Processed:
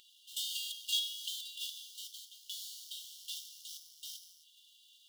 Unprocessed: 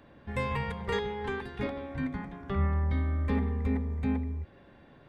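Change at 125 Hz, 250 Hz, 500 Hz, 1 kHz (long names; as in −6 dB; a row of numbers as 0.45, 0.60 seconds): below −40 dB, below −40 dB, below −40 dB, below −40 dB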